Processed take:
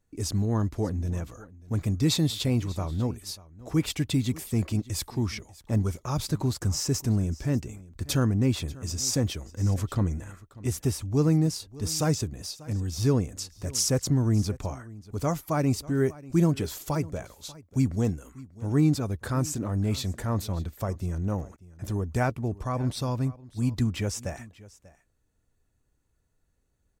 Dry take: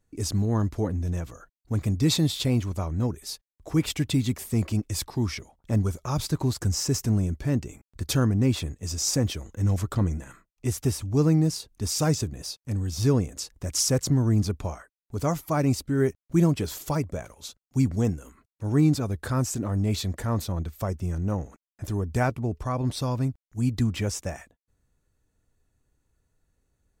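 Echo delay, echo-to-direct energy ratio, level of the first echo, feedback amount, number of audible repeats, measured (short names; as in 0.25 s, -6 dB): 0.59 s, -20.0 dB, -20.0 dB, no steady repeat, 1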